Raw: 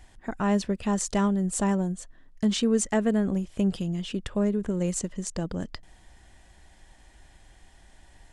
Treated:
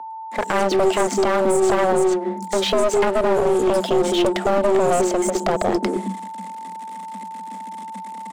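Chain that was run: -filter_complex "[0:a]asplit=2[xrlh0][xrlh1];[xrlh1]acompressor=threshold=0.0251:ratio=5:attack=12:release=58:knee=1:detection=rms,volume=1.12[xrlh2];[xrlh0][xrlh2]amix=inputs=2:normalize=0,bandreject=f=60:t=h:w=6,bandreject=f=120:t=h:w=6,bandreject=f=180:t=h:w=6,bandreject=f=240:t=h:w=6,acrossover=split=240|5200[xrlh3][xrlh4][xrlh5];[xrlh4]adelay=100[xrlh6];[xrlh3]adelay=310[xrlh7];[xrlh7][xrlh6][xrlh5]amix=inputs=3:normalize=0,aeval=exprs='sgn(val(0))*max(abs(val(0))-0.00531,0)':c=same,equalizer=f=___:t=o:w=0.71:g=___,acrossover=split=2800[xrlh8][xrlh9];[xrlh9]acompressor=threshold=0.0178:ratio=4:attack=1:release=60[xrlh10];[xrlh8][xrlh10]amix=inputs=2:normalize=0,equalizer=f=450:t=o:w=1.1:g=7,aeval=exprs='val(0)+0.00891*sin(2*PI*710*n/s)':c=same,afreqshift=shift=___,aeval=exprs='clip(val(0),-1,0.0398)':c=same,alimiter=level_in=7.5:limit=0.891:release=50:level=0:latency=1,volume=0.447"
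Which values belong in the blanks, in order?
8.2k, 5.5, 180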